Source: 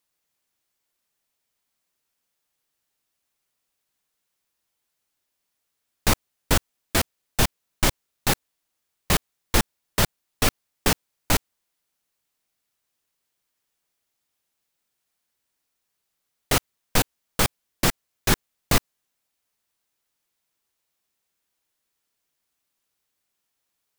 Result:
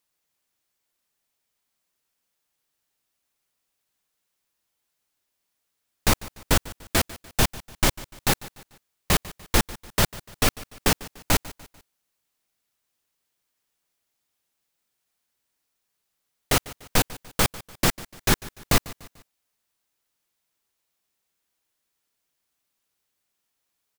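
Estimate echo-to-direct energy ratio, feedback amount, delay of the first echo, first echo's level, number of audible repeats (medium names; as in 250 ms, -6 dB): -18.0 dB, 43%, 147 ms, -19.0 dB, 3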